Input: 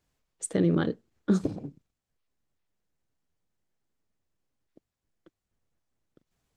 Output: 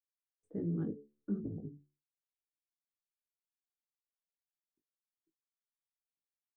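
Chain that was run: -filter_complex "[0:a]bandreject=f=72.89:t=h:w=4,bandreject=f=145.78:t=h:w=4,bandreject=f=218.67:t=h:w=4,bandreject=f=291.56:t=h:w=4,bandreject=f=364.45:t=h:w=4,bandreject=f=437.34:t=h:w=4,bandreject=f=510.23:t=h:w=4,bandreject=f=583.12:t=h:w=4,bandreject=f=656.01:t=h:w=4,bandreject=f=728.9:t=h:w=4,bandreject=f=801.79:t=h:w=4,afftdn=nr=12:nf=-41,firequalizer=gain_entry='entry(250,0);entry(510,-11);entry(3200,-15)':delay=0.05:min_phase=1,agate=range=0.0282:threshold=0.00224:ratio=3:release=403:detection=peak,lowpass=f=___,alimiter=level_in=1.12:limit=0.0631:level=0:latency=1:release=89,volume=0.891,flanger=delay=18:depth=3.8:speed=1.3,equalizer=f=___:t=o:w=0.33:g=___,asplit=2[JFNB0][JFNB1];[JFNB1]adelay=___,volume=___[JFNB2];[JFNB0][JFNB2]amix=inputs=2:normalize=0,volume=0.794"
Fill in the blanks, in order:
1.5k, 420, 7.5, 19, 0.224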